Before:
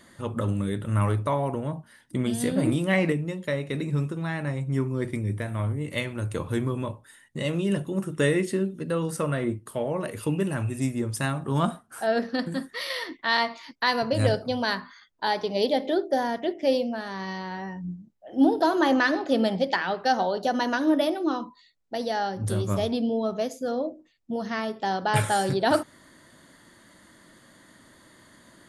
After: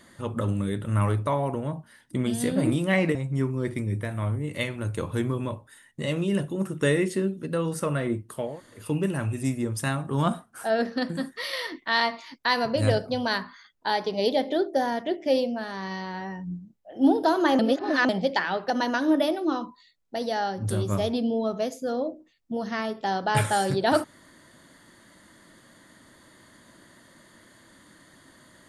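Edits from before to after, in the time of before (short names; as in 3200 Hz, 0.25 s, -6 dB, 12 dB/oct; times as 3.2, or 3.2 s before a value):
3.15–4.52 cut
9.87–10.19 room tone, crossfade 0.24 s
18.96–19.46 reverse
20.07–20.49 cut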